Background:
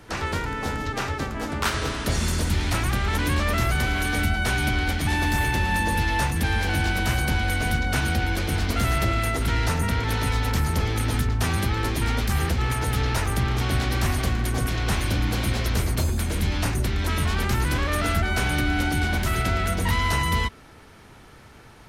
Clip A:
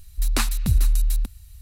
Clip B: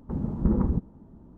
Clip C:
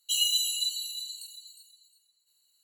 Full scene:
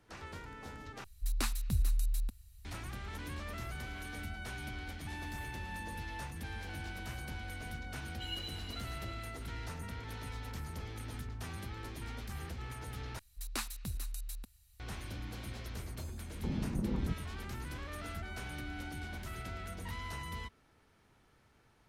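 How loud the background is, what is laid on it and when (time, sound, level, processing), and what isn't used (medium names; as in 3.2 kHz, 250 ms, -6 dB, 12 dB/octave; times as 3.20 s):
background -19.5 dB
1.04 s: replace with A -12 dB
8.11 s: add C -17.5 dB + resonant high shelf 4.6 kHz -12.5 dB, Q 1.5
13.19 s: replace with A -13 dB + bass shelf 170 Hz -10 dB
16.34 s: add B -5.5 dB + compression, threshold -24 dBFS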